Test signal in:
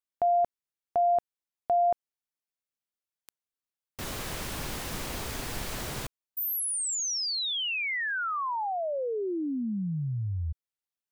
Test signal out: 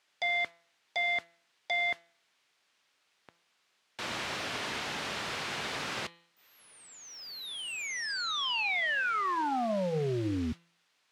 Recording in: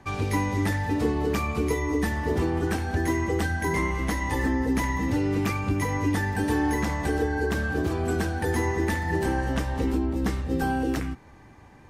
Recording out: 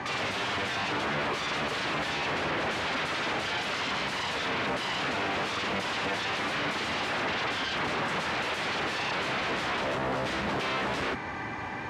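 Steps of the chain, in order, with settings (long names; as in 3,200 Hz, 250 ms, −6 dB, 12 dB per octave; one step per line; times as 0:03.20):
noise that follows the level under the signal 31 dB
tilt shelving filter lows −6 dB, about 730 Hz
brickwall limiter −23.5 dBFS
downward compressor 12 to 1, threshold −32 dBFS
sine wavefolder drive 16 dB, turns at −23.5 dBFS
background noise blue −58 dBFS
band-pass filter 110–3,200 Hz
hum removal 169.6 Hz, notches 25
level −2 dB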